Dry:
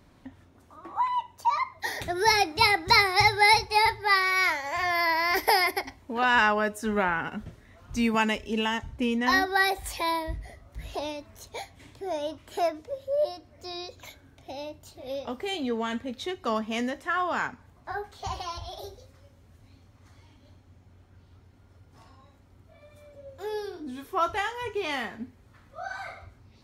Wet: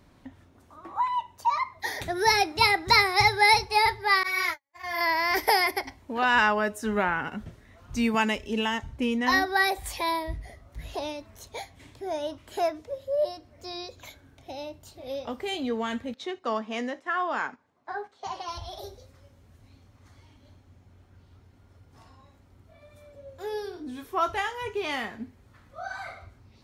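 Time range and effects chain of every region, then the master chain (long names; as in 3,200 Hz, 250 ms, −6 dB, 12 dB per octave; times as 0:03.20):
0:04.23–0:05.01: noise gate −27 dBFS, range −53 dB + high-shelf EQ 12,000 Hz +11 dB + string-ensemble chorus
0:16.14–0:18.48: noise gate −46 dBFS, range −8 dB + band-pass filter 250–6,300 Hz + parametric band 3,700 Hz −3 dB 1.8 octaves
whole clip: no processing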